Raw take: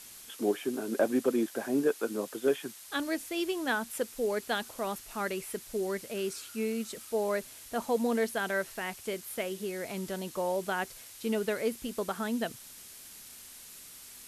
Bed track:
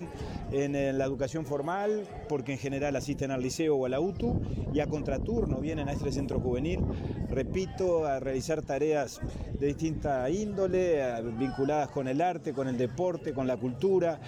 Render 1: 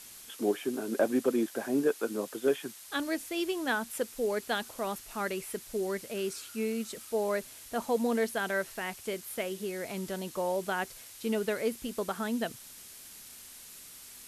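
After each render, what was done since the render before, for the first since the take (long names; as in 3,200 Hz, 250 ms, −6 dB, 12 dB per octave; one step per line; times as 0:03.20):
no processing that can be heard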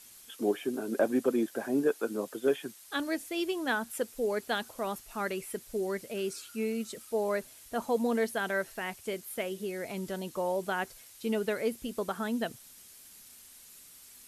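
broadband denoise 6 dB, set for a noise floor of −50 dBFS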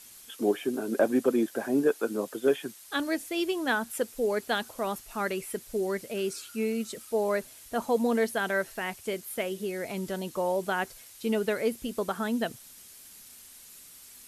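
level +3 dB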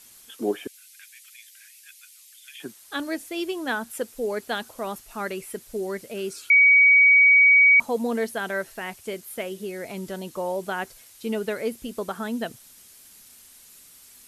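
0:00.67–0:02.60: elliptic high-pass filter 2,100 Hz, stop band 70 dB
0:06.50–0:07.80: beep over 2,260 Hz −11.5 dBFS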